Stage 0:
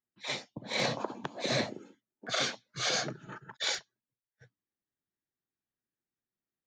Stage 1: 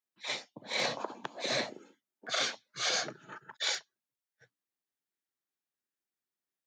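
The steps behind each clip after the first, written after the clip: HPF 480 Hz 6 dB/oct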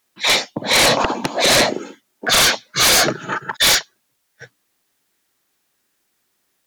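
sine folder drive 12 dB, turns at -18 dBFS; gain +8.5 dB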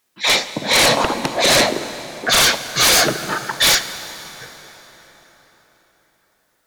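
plate-style reverb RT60 4.8 s, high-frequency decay 0.7×, DRR 11 dB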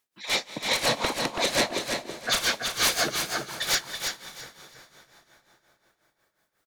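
tremolo 5.6 Hz, depth 83%; on a send: feedback echo 0.33 s, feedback 22%, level -6 dB; on the sum: gain -8 dB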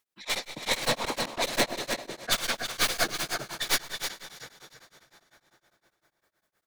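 tracing distortion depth 0.079 ms; plate-style reverb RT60 1.4 s, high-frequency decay 0.9×, pre-delay 0.11 s, DRR 16 dB; beating tremolo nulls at 9.9 Hz

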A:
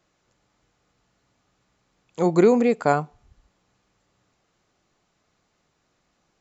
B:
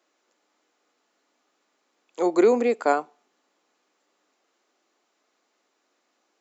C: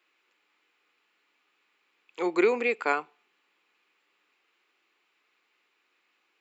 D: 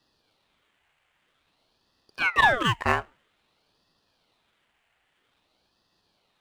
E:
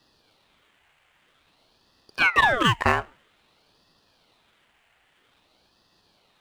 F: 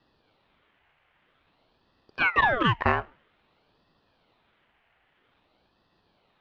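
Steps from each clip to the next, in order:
steep high-pass 260 Hz 36 dB/oct; gain -1 dB
fifteen-band EQ 100 Hz -6 dB, 250 Hz -10 dB, 630 Hz -12 dB, 2500 Hz +10 dB, 6300 Hz -12 dB
median filter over 9 samples; ring modulator with a swept carrier 1300 Hz, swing 75%, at 0.51 Hz; gain +6 dB
compressor 6:1, threshold -22 dBFS, peak gain reduction 8.5 dB; gain +7 dB
air absorption 290 m; gain -1 dB

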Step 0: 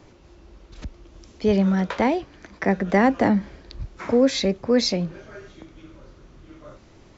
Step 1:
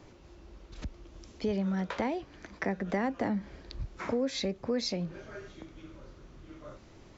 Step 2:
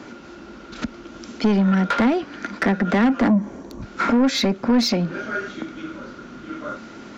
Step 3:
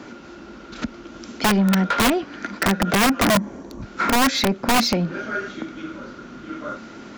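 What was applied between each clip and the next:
compressor 2.5:1, threshold -28 dBFS, peak gain reduction 10.5 dB; gain -3.5 dB
small resonant body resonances 230/1400 Hz, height 16 dB, ringing for 40 ms; overdrive pedal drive 22 dB, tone 5400 Hz, clips at -9 dBFS; spectral gain 3.28–3.83, 1200–5500 Hz -13 dB
wrapped overs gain 12.5 dB

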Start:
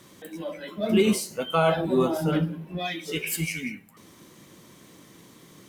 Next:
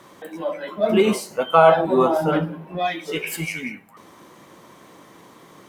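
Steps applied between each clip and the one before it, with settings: bell 880 Hz +14 dB 2.4 oct; gain -2.5 dB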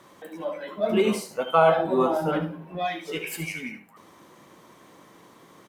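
echo 74 ms -11 dB; gain -5 dB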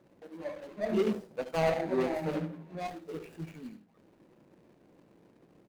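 median filter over 41 samples; gain -5.5 dB

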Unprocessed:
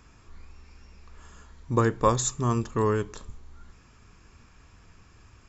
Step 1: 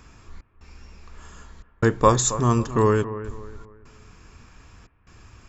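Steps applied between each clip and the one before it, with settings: step gate "xx.xxxxx.xxxxxx." 74 bpm -60 dB; analogue delay 0.272 s, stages 4096, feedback 36%, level -13.5 dB; gain +5.5 dB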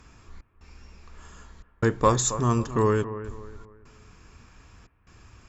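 added harmonics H 5 -30 dB, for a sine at -4 dBFS; gain -4 dB

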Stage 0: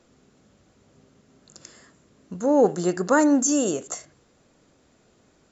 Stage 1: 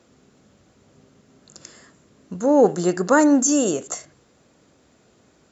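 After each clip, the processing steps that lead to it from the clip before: HPF 54 Hz; gain +3 dB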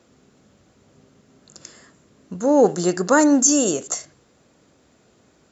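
dynamic EQ 5400 Hz, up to +6 dB, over -43 dBFS, Q 0.99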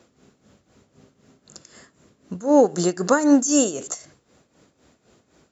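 tremolo 3.9 Hz, depth 75%; gain +2 dB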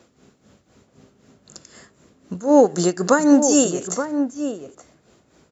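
outdoor echo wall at 150 m, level -8 dB; gain +2 dB

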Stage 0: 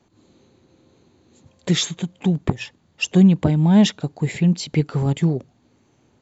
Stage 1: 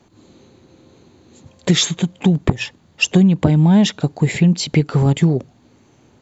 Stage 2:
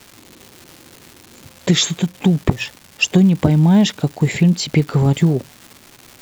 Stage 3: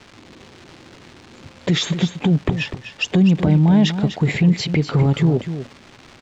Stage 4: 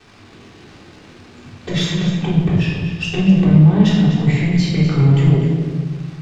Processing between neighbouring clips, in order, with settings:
compressor 5:1, threshold -17 dBFS, peak gain reduction 8 dB; gain +7.5 dB
crackle 470/s -29 dBFS
limiter -10 dBFS, peak gain reduction 8.5 dB; air absorption 130 m; echo 0.248 s -10.5 dB; gain +2 dB
one diode to ground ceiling -8.5 dBFS; shoebox room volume 1100 m³, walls mixed, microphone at 3.6 m; gain -6 dB

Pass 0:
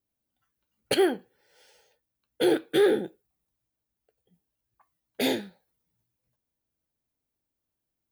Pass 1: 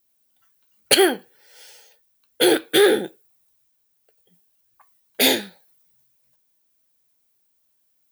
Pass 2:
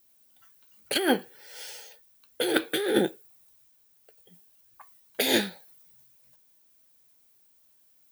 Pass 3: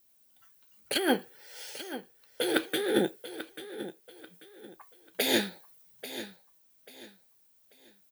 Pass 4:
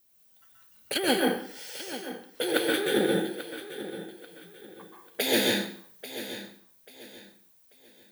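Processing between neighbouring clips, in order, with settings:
tilt +2.5 dB/oct; gain +8.5 dB
negative-ratio compressor -23 dBFS, ratio -1; gain -1.5 dB
feedback echo 0.839 s, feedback 30%, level -13 dB; gain -2.5 dB
plate-style reverb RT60 0.55 s, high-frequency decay 0.9×, pre-delay 0.115 s, DRR -1.5 dB

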